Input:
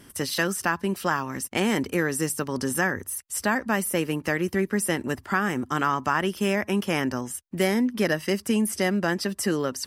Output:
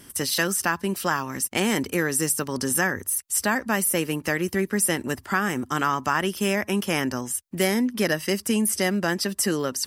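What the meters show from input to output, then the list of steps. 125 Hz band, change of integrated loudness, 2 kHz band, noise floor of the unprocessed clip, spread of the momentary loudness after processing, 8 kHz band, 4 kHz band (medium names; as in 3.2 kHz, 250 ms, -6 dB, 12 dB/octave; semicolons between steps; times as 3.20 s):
0.0 dB, +1.5 dB, +1.0 dB, -52 dBFS, 4 LU, +6.5 dB, +3.5 dB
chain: treble shelf 4.1 kHz +7.5 dB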